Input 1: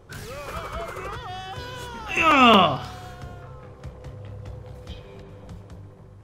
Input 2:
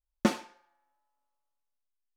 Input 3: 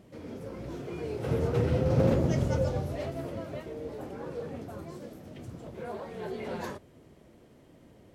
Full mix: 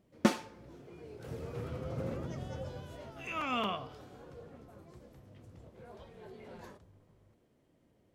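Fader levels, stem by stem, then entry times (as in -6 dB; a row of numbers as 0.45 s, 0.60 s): -19.5 dB, -1.0 dB, -14.0 dB; 1.10 s, 0.00 s, 0.00 s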